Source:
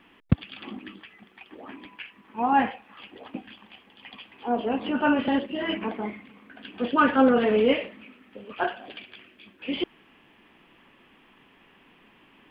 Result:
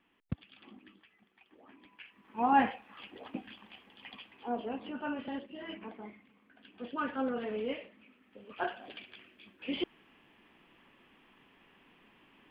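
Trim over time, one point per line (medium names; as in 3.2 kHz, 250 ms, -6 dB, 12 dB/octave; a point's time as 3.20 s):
1.74 s -16 dB
2.45 s -4 dB
4.08 s -4 dB
5.02 s -15 dB
7.85 s -15 dB
8.84 s -6 dB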